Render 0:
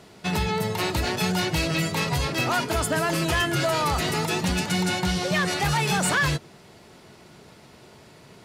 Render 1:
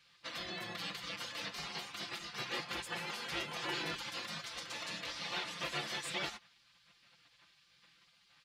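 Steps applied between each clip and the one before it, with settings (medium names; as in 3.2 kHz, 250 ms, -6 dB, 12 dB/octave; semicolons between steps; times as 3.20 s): three-band isolator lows -19 dB, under 300 Hz, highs -18 dB, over 4.4 kHz; spectral gate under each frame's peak -15 dB weak; comb 5.8 ms; trim -6 dB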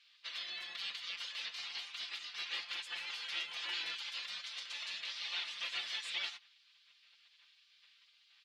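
band-pass filter 3.3 kHz, Q 1.4; trim +3 dB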